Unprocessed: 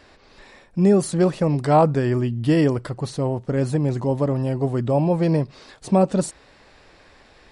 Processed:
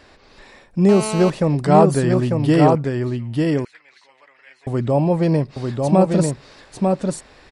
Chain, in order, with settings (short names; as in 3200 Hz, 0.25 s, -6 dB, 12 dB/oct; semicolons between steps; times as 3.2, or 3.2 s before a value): 2.75–4.67 ladder band-pass 2300 Hz, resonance 60%; echo 0.896 s -3.5 dB; 0.89–1.3 GSM buzz -28 dBFS; gain +2 dB